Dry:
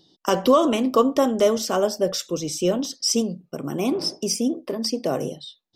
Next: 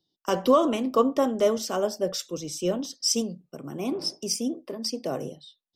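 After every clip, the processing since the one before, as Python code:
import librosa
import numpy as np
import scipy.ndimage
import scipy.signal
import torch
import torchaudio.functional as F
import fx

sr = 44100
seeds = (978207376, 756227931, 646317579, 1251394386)

y = fx.band_widen(x, sr, depth_pct=40)
y = y * librosa.db_to_amplitude(-5.0)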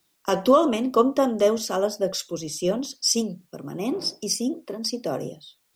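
y = fx.quant_dither(x, sr, seeds[0], bits=12, dither='triangular')
y = y * librosa.db_to_amplitude(2.5)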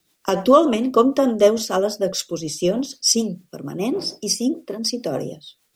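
y = fx.rotary(x, sr, hz=6.7)
y = y * librosa.db_to_amplitude(6.0)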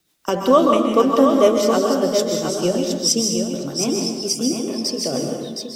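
y = x + 10.0 ** (-6.0 / 20.0) * np.pad(x, (int(717 * sr / 1000.0), 0))[:len(x)]
y = fx.rev_plate(y, sr, seeds[1], rt60_s=1.0, hf_ratio=0.85, predelay_ms=115, drr_db=2.5)
y = y * librosa.db_to_amplitude(-1.0)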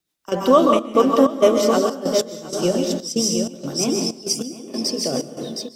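y = fx.step_gate(x, sr, bpm=95, pattern='..xxx.xx.xxx.x', floor_db=-12.0, edge_ms=4.5)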